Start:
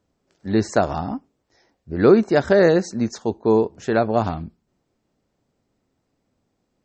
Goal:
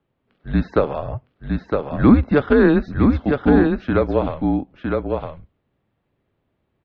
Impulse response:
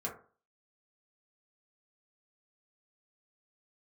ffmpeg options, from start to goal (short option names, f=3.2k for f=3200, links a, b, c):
-af "aeval=exprs='0.75*(cos(1*acos(clip(val(0)/0.75,-1,1)))-cos(1*PI/2))+0.0211*(cos(4*acos(clip(val(0)/0.75,-1,1)))-cos(4*PI/2))':c=same,highpass=f=210:t=q:w=0.5412,highpass=f=210:t=q:w=1.307,lowpass=f=3.6k:t=q:w=0.5176,lowpass=f=3.6k:t=q:w=0.7071,lowpass=f=3.6k:t=q:w=1.932,afreqshift=-150,aecho=1:1:960:0.631,volume=1.5dB"